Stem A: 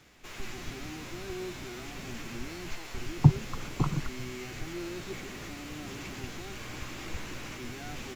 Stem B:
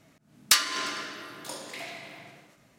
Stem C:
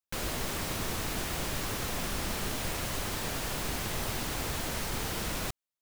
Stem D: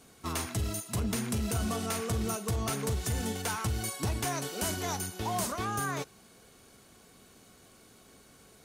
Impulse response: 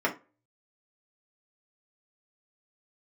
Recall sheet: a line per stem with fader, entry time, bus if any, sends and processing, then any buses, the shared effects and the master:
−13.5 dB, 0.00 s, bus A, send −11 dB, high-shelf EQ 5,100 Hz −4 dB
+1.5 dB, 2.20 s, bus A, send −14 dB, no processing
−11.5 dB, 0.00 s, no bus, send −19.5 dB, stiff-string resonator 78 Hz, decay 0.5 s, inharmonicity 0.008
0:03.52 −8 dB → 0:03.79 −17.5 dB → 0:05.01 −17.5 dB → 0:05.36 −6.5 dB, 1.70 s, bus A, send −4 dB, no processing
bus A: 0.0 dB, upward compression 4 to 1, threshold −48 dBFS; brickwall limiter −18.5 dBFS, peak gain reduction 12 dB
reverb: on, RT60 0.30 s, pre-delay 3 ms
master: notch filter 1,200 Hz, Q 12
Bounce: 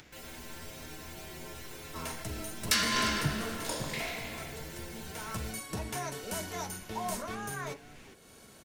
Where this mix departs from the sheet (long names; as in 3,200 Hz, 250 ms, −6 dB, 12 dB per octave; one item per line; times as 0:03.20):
stem C −11.5 dB → −1.5 dB
reverb return −9.0 dB